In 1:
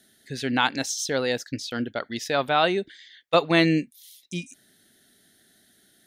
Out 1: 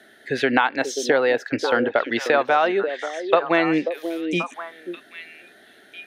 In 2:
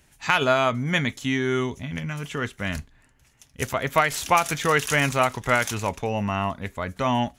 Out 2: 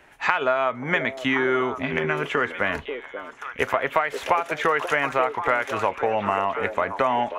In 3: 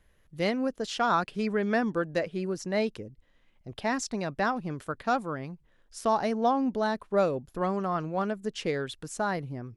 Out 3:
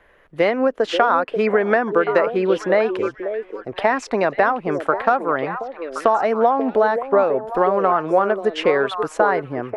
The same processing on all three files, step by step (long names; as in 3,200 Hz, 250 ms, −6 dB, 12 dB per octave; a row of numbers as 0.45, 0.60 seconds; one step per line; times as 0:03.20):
three-way crossover with the lows and the highs turned down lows −18 dB, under 350 Hz, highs −21 dB, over 2,500 Hz
downward compressor 6 to 1, threshold −33 dBFS
on a send: echo through a band-pass that steps 536 ms, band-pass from 410 Hz, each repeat 1.4 octaves, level −5 dB
on the sum: normalise the peak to −2 dBFS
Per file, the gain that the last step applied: +17.0, +13.5, +19.5 decibels